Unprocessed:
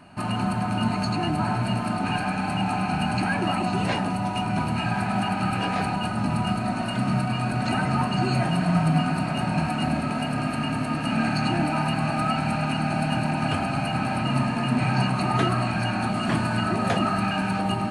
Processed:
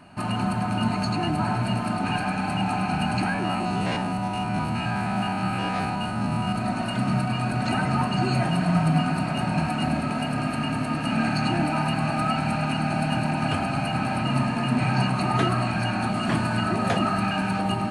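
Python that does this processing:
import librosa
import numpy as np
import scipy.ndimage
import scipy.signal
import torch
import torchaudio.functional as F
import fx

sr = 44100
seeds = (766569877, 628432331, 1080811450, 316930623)

y = fx.spec_steps(x, sr, hold_ms=50, at=(3.29, 6.55))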